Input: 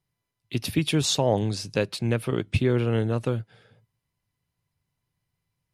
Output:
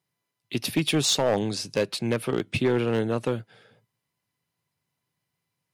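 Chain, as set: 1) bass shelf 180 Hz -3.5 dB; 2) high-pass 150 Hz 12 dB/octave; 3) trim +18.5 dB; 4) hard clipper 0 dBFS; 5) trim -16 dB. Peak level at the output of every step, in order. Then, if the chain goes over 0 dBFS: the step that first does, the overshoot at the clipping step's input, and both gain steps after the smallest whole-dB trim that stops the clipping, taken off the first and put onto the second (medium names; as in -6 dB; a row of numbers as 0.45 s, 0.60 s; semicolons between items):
-10.0 dBFS, -10.5 dBFS, +8.0 dBFS, 0.0 dBFS, -16.0 dBFS; step 3, 8.0 dB; step 3 +10.5 dB, step 5 -8 dB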